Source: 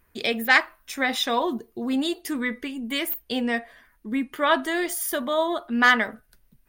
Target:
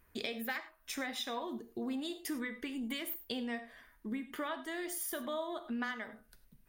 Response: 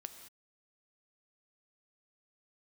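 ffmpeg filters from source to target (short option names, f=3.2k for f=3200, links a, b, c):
-filter_complex "[0:a]acompressor=threshold=-32dB:ratio=12[a];[1:a]atrim=start_sample=2205,afade=t=out:st=0.16:d=0.01,atrim=end_sample=7497[b];[a][b]afir=irnorm=-1:irlink=0,volume=1dB"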